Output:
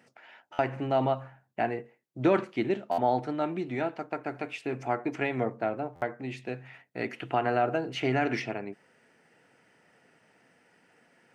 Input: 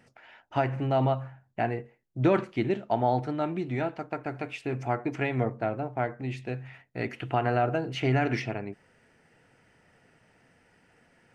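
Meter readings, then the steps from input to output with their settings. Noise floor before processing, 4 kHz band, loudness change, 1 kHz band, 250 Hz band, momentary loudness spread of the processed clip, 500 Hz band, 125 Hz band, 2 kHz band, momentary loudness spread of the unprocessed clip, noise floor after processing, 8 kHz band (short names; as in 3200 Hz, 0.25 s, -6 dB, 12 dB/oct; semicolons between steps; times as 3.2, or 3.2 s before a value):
-65 dBFS, 0.0 dB, -1.0 dB, -0.5 dB, -1.0 dB, 11 LU, 0.0 dB, -7.5 dB, 0.0 dB, 10 LU, -67 dBFS, n/a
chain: HPF 190 Hz 12 dB/oct; stuck buffer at 0.52/2.91/5.95, samples 512, times 5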